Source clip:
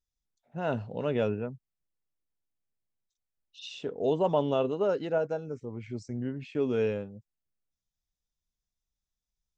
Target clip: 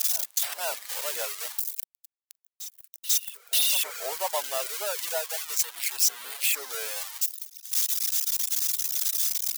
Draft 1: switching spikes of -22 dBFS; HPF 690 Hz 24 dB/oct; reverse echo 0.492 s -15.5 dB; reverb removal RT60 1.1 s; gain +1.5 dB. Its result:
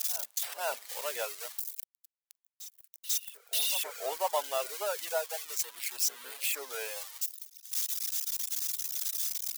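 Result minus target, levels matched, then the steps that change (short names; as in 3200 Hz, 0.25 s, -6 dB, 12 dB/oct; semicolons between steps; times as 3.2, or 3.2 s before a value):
switching spikes: distortion -7 dB
change: switching spikes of -15 dBFS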